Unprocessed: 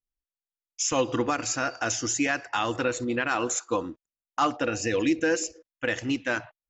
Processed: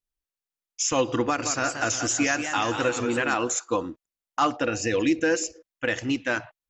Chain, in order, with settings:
0:01.22–0:03.34: feedback echo with a swinging delay time 179 ms, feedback 57%, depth 160 cents, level −7.5 dB
level +1.5 dB

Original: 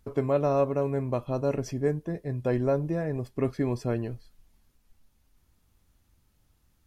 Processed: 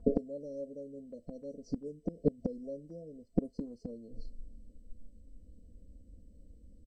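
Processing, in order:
brick-wall band-stop 670–4,100 Hz
0:03.21–0:03.91: transient designer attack +2 dB, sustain −4 dB
low-pass that shuts in the quiet parts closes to 1,200 Hz, open at −21 dBFS
gate with flip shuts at −24 dBFS, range −28 dB
comb filter 4 ms, depth 91%
level +9 dB
MP2 192 kbit/s 32,000 Hz

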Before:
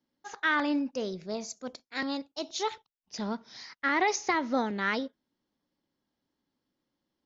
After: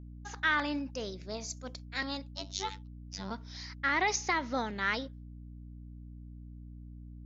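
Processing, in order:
tilt shelving filter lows −4 dB, about 840 Hz
downward expander −49 dBFS
0:02.31–0:03.31: phases set to zero 96.6 Hz
mains hum 60 Hz, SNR 10 dB
level −3.5 dB

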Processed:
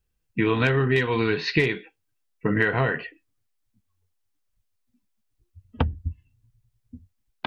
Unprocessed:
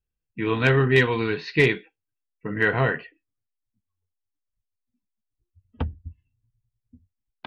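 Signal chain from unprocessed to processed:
downward compressor 12 to 1, threshold −27 dBFS, peak gain reduction 14.5 dB
level +9 dB

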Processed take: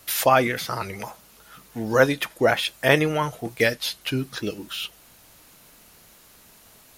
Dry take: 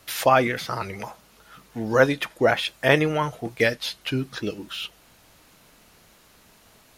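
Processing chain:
surface crackle 19 per second −49 dBFS
high-shelf EQ 7,800 Hz +10 dB

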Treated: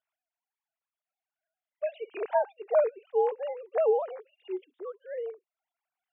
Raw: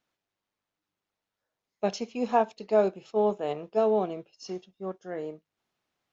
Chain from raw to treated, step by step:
three sine waves on the formant tracks
level −1.5 dB

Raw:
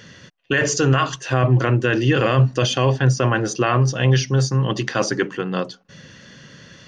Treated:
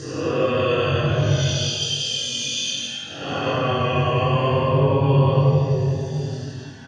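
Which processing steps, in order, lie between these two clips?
extreme stretch with random phases 16×, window 0.05 s, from 0:02.56
double-tracking delay 21 ms −3 dB
level −4.5 dB

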